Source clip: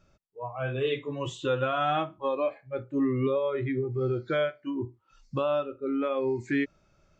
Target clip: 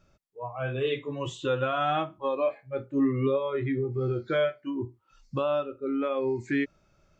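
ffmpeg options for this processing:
-filter_complex "[0:a]asettb=1/sr,asplit=3[a][b][c];[a]atrim=end=2.384[d];[b]atrim=start=2.38:end=4.59,asetpts=PTS-STARTPTS,afade=t=in:d=0.004:c=qsin,afade=t=out:st=2.206:d=0.004:c=qsin,asplit=2[e][f];[f]adelay=22,volume=-10dB[g];[e][g]amix=inputs=2:normalize=0,atrim=end_sample=97461[h];[c]atrim=start=4.586[i];[d][h]acrossfade=d=0.004:c1=hsin:c2=qsin[j];[j][i]acrossfade=d=0.004:c1=qsin:c2=hsin"

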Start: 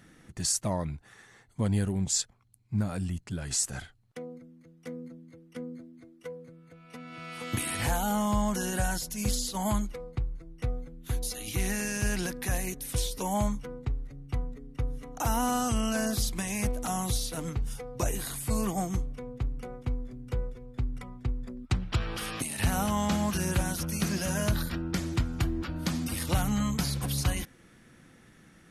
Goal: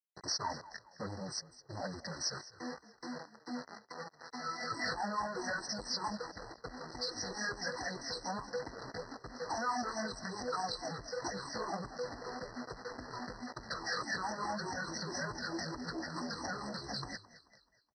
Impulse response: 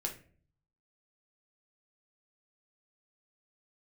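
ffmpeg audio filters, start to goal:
-filter_complex "[0:a]afftfilt=real='re*pow(10,24/40*sin(2*PI*(0.66*log(max(b,1)*sr/1024/100)/log(2)-(-2.9)*(pts-256)/sr)))':imag='im*pow(10,24/40*sin(2*PI*(0.66*log(max(b,1)*sr/1024/100)/log(2)-(-2.9)*(pts-256)/sr)))':win_size=1024:overlap=0.75,asplit=2[a][b];[b]asoftclip=type=tanh:threshold=-17.5dB,volume=-7.5dB[c];[a][c]amix=inputs=2:normalize=0,acrusher=bits=5:mix=0:aa=0.000001,acompressor=threshold=-22dB:ratio=16,aresample=16000,asoftclip=type=hard:threshold=-27.5dB,aresample=44100,asplit=5[d][e][f][g][h];[e]adelay=339,afreqshift=-31,volume=-17dB[i];[f]adelay=678,afreqshift=-62,volume=-23.7dB[j];[g]adelay=1017,afreqshift=-93,volume=-30.5dB[k];[h]adelay=1356,afreqshift=-124,volume=-37.2dB[l];[d][i][j][k][l]amix=inputs=5:normalize=0,flanger=delay=17:depth=3.7:speed=2,highpass=f=730:p=1,atempo=1.6,afftfilt=real='re*eq(mod(floor(b*sr/1024/2000),2),0)':imag='im*eq(mod(floor(b*sr/1024/2000),2),0)':win_size=1024:overlap=0.75,volume=1.5dB"

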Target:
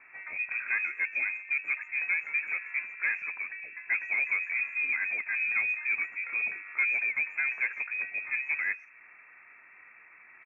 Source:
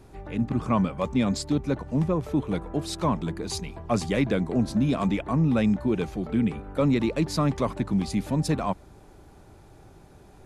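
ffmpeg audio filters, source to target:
-filter_complex "[0:a]lowshelf=f=380:g=-9.5,bandreject=f=50:t=h:w=6,bandreject=f=100:t=h:w=6,bandreject=f=150:t=h:w=6,bandreject=f=200:t=h:w=6,bandreject=f=250:t=h:w=6,acrossover=split=1000[a][b];[b]acompressor=threshold=-54dB:ratio=4[c];[a][c]amix=inputs=2:normalize=0,asplit=2[d][e];[e]highpass=f=720:p=1,volume=14dB,asoftclip=type=tanh:threshold=-17.5dB[f];[d][f]amix=inputs=2:normalize=0,lowpass=f=1.1k:p=1,volume=-6dB,lowpass=f=2.3k:t=q:w=0.5098,lowpass=f=2.3k:t=q:w=0.6013,lowpass=f=2.3k:t=q:w=0.9,lowpass=f=2.3k:t=q:w=2.563,afreqshift=-2700,asplit=2[g][h];[h]adelay=130,highpass=300,lowpass=3.4k,asoftclip=type=hard:threshold=-26dB,volume=-29dB[i];[g][i]amix=inputs=2:normalize=0" -ar 22050 -c:a aac -b:a 32k

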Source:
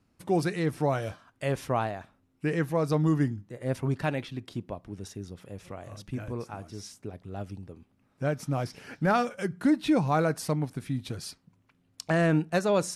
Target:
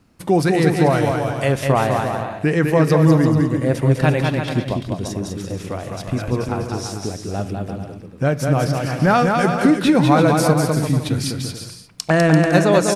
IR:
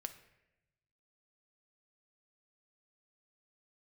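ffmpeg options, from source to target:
-filter_complex "[0:a]acompressor=threshold=-30dB:ratio=1.5,aecho=1:1:200|340|438|506.6|554.6:0.631|0.398|0.251|0.158|0.1,asplit=2[a][b];[1:a]atrim=start_sample=2205[c];[b][c]afir=irnorm=-1:irlink=0,volume=2.5dB[d];[a][d]amix=inputs=2:normalize=0,volume=7dB"

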